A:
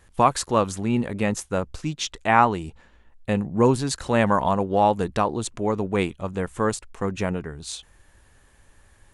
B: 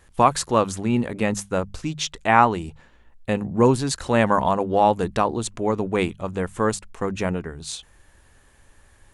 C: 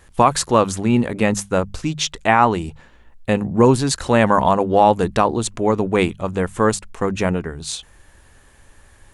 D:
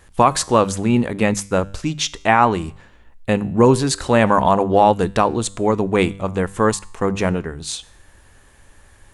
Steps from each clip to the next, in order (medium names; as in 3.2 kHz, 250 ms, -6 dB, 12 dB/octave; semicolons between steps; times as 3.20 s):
hum notches 50/100/150/200 Hz; trim +1.5 dB
loudness maximiser +6 dB; trim -1 dB
feedback comb 98 Hz, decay 0.64 s, harmonics all, mix 40%; trim +4 dB